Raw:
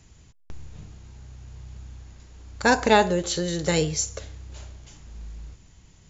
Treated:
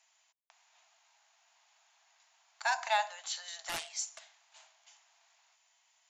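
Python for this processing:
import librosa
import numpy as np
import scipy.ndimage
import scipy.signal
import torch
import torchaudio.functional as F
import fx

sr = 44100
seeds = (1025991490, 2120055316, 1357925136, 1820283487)

y = fx.cheby_harmonics(x, sr, harmonics=(5,), levels_db=(-28,), full_scale_db=-4.5)
y = scipy.signal.sosfilt(scipy.signal.cheby1(6, 3, 650.0, 'highpass', fs=sr, output='sos'), y)
y = fx.doppler_dist(y, sr, depth_ms=0.49, at=(3.69, 4.67))
y = y * 10.0 ** (-9.0 / 20.0)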